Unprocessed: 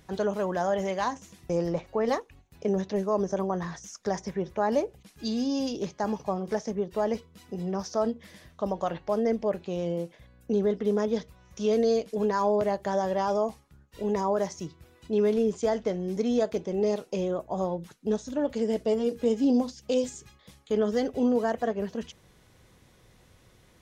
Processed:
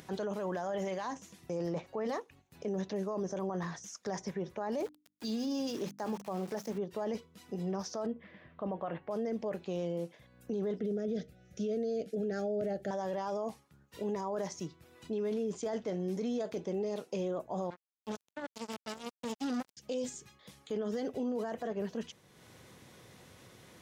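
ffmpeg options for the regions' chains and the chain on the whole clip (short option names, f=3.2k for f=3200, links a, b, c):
-filter_complex "[0:a]asettb=1/sr,asplit=3[a][b][c];[a]atrim=end=4.784[d];[b]atrim=start=4.78:end=6.78,asetpts=PTS-STARTPTS,afade=t=in:d=0.004:c=qsin,afade=t=out:st=1.996:d=0.004:c=qsin,aeval=exprs='val(0)*gte(abs(val(0)),0.00794)':c=same,bandreject=f=50:t=h:w=6,bandreject=f=100:t=h:w=6,bandreject=f=150:t=h:w=6,bandreject=f=200:t=h:w=6,bandreject=f=250:t=h:w=6,bandreject=f=300:t=h:w=6[e];[c]atrim=start=6.776[f];[d][e]acrossfade=d=0.004:c1=hsin:c2=qsin[g];[g][f]acrossfade=d=0.004:c1=qsin:c2=hsin,asettb=1/sr,asplit=3[h][i][j];[h]atrim=end=8.064[k];[i]atrim=start=8.06:end=9.11,asetpts=PTS-STARTPTS,afade=t=in:d=0.004:c=qsin,afade=t=out:st=1.046:d=0.004:c=qsin,lowpass=f=2.7k:w=0.5412,lowpass=f=2.7k:w=1.3066,bandreject=f=880:w=17[l];[j]atrim=start=9.106[m];[k][l]acrossfade=d=0.004:c1=hsin:c2=qsin[n];[n][m]acrossfade=d=0.004:c1=qsin:c2=hsin,asettb=1/sr,asplit=3[o][p][q];[o]atrim=end=10.794[r];[p]atrim=start=10.79:end=12.91,asetpts=PTS-STARTPTS,afade=t=in:d=0.004:c=qsin,afade=t=out:st=2.116:d=0.004:c=qsin,asuperstop=centerf=1000:order=8:qfactor=1.9,tiltshelf=f=830:g=4.5[s];[q]atrim=start=12.906[t];[r][s]acrossfade=d=0.004:c1=hsin:c2=qsin[u];[u][t]acrossfade=d=0.004:c1=qsin:c2=hsin,asettb=1/sr,asplit=3[v][w][x];[v]atrim=end=17.704[y];[w]atrim=start=17.7:end=19.77,asetpts=PTS-STARTPTS,afade=t=in:d=0.004:c=qsin,afade=t=out:st=2.066:d=0.004:c=qsin,asuperstop=centerf=1400:order=8:qfactor=1.4,equalizer=f=430:t=o:w=1.4:g=-15,acrusher=bits=4:mix=0:aa=0.5[z];[x]atrim=start=19.766[aa];[y][z]acrossfade=d=0.004:c1=hsin:c2=qsin[ab];[ab][aa]acrossfade=d=0.004:c1=qsin:c2=hsin,highpass=120,acompressor=mode=upward:threshold=-44dB:ratio=2.5,alimiter=level_in=1dB:limit=-24dB:level=0:latency=1:release=12,volume=-1dB,volume=-3dB"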